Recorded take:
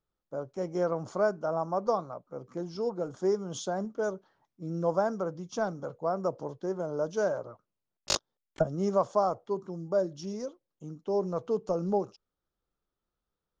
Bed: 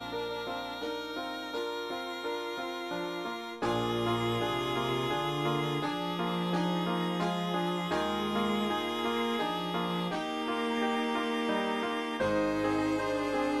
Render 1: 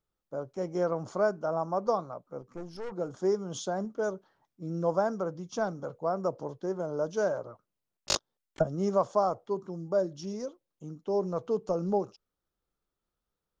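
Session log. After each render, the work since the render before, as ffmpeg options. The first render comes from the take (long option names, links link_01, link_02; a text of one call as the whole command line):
ffmpeg -i in.wav -filter_complex "[0:a]asettb=1/sr,asplit=3[link_01][link_02][link_03];[link_01]atrim=end=2.414[link_04];[link_02]atrim=start=2.41:end=2.92,asetpts=PTS-STARTPTS,afade=type=in:duration=0.004:curve=qsin,afade=type=out:start_time=0.506:duration=0.004:curve=qsin,aeval=exprs='(tanh(56.2*val(0)+0.75)-tanh(0.75))/56.2':channel_layout=same[link_05];[link_03]atrim=start=2.916[link_06];[link_04][link_05]acrossfade=duration=0.004:curve1=hsin:curve2=qsin[link_07];[link_07][link_06]acrossfade=duration=0.004:curve1=qsin:curve2=hsin" out.wav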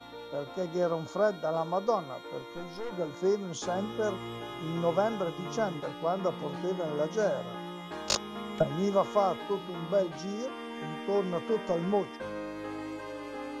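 ffmpeg -i in.wav -i bed.wav -filter_complex "[1:a]volume=-9dB[link_01];[0:a][link_01]amix=inputs=2:normalize=0" out.wav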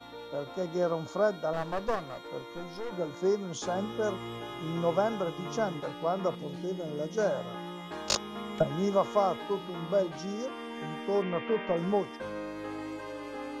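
ffmpeg -i in.wav -filter_complex "[0:a]asettb=1/sr,asplit=3[link_01][link_02][link_03];[link_01]atrim=end=1.534[link_04];[link_02]atrim=start=1.53:end=2.28,asetpts=PTS-STARTPTS,afade=type=in:duration=0.004:curve=qsin,afade=type=out:start_time=0.746:duration=0.004:curve=qsin,aeval=exprs='clip(val(0),-1,0.0119)':channel_layout=same[link_05];[link_03]atrim=start=2.276[link_06];[link_04][link_05]acrossfade=duration=0.004:curve1=hsin:curve2=qsin[link_07];[link_07][link_06]acrossfade=duration=0.004:curve1=qsin:curve2=hsin,asettb=1/sr,asplit=3[link_08][link_09][link_10];[link_08]atrim=end=6.354[link_11];[link_09]atrim=start=6.35:end=7.18,asetpts=PTS-STARTPTS,afade=type=in:duration=0.004:curve=qsin,afade=type=out:start_time=0.826:duration=0.004:curve=qsin,equalizer=frequency=1100:width_type=o:width=1.6:gain=-12[link_12];[link_10]atrim=start=7.176[link_13];[link_11][link_12]acrossfade=duration=0.004:curve1=hsin:curve2=qsin[link_14];[link_14][link_13]acrossfade=duration=0.004:curve1=qsin:curve2=hsin,asettb=1/sr,asplit=3[link_15][link_16][link_17];[link_15]atrim=end=11.224[link_18];[link_16]atrim=start=11.22:end=11.77,asetpts=PTS-STARTPTS,afade=type=in:duration=0.004:curve=qsin,afade=type=out:start_time=0.546:duration=0.004:curve=qsin,lowpass=frequency=2500:width_type=q:width=2.3[link_19];[link_17]atrim=start=11.766[link_20];[link_18][link_19]acrossfade=duration=0.004:curve1=hsin:curve2=qsin[link_21];[link_21][link_20]acrossfade=duration=0.004:curve1=qsin:curve2=hsin" out.wav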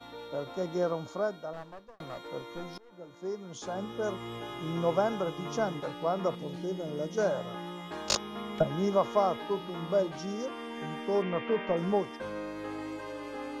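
ffmpeg -i in.wav -filter_complex "[0:a]asettb=1/sr,asplit=3[link_01][link_02][link_03];[link_01]atrim=end=8.174[link_04];[link_02]atrim=start=8.17:end=9.68,asetpts=PTS-STARTPTS,afade=type=in:duration=0.004:curve=qsin,afade=type=out:start_time=1.506:duration=0.004:curve=qsin,equalizer=frequency=7400:width=3.4:gain=-5.5[link_05];[link_03]atrim=start=9.676[link_06];[link_04][link_05]acrossfade=duration=0.004:curve1=hsin:curve2=qsin[link_07];[link_07][link_06]acrossfade=duration=0.004:curve1=qsin:curve2=hsin,asplit=3[link_08][link_09][link_10];[link_08]atrim=end=2,asetpts=PTS-STARTPTS,afade=type=out:start_time=0.73:duration=1.27[link_11];[link_09]atrim=start=2:end=2.78,asetpts=PTS-STARTPTS,afade=type=in:duration=0.004:curve=hsin,afade=type=out:start_time=0.776:duration=0.004:curve=hsin:silence=0.0668344[link_12];[link_10]atrim=start=2.78,asetpts=PTS-STARTPTS,afade=type=in:duration=1.65:silence=0.0668344[link_13];[link_11][link_12][link_13]concat=n=3:v=0:a=1" out.wav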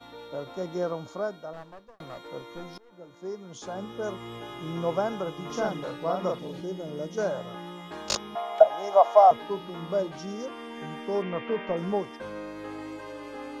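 ffmpeg -i in.wav -filter_complex "[0:a]asettb=1/sr,asplit=3[link_01][link_02][link_03];[link_01]atrim=end=5.464[link_04];[link_02]atrim=start=5.46:end=6.61,asetpts=PTS-STARTPTS,afade=type=in:duration=0.004:curve=qsin,afade=type=out:start_time=1.146:duration=0.004:curve=qsin,asplit=2[link_05][link_06];[link_06]adelay=38,volume=-2dB[link_07];[link_05][link_07]amix=inputs=2:normalize=0,atrim=end_sample=50715[link_08];[link_03]atrim=start=6.606[link_09];[link_04][link_08]acrossfade=duration=0.004:curve1=hsin:curve2=qsin[link_10];[link_10][link_09]acrossfade=duration=0.004:curve1=qsin:curve2=hsin,asettb=1/sr,asplit=3[link_11][link_12][link_13];[link_11]atrim=end=8.354[link_14];[link_12]atrim=start=8.35:end=9.31,asetpts=PTS-STARTPTS,afade=type=in:duration=0.004:curve=qsin,afade=type=out:start_time=0.956:duration=0.004:curve=qsin,highpass=frequency=700:width_type=q:width=7.3[link_15];[link_13]atrim=start=9.306[link_16];[link_14][link_15]acrossfade=duration=0.004:curve1=hsin:curve2=qsin[link_17];[link_17][link_16]acrossfade=duration=0.004:curve1=qsin:curve2=hsin" out.wav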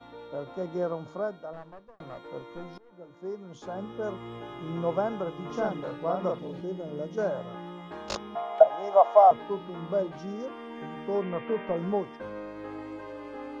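ffmpeg -i in.wav -af "lowpass=frequency=1700:poles=1,bandreject=frequency=154.5:width_type=h:width=4,bandreject=frequency=309:width_type=h:width=4" out.wav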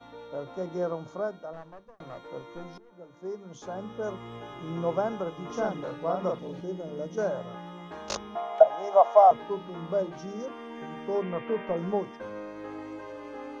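ffmpeg -i in.wav -af "equalizer=frequency=6100:width_type=o:width=0.21:gain=8.5,bandreject=frequency=50:width_type=h:width=6,bandreject=frequency=100:width_type=h:width=6,bandreject=frequency=150:width_type=h:width=6,bandreject=frequency=200:width_type=h:width=6,bandreject=frequency=250:width_type=h:width=6,bandreject=frequency=300:width_type=h:width=6,bandreject=frequency=350:width_type=h:width=6" out.wav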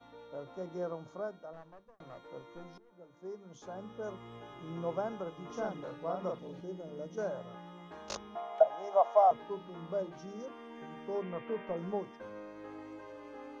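ffmpeg -i in.wav -af "volume=-7.5dB" out.wav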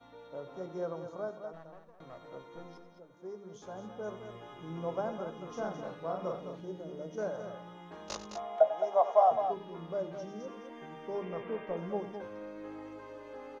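ffmpeg -i in.wav -filter_complex "[0:a]asplit=2[link_01][link_02];[link_02]adelay=19,volume=-14dB[link_03];[link_01][link_03]amix=inputs=2:normalize=0,aecho=1:1:93|212:0.2|0.376" out.wav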